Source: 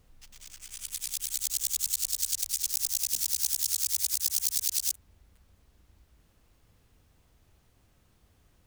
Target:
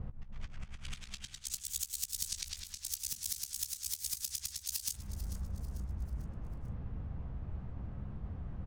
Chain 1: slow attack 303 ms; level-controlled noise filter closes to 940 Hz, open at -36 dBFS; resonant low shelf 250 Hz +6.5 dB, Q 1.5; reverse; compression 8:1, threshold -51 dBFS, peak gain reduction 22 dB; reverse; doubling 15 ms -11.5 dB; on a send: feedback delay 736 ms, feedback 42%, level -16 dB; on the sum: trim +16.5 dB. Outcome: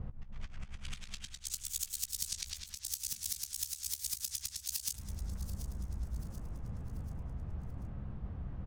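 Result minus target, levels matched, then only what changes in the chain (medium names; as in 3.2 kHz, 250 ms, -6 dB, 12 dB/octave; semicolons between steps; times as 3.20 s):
echo 292 ms late
change: feedback delay 444 ms, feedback 42%, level -16 dB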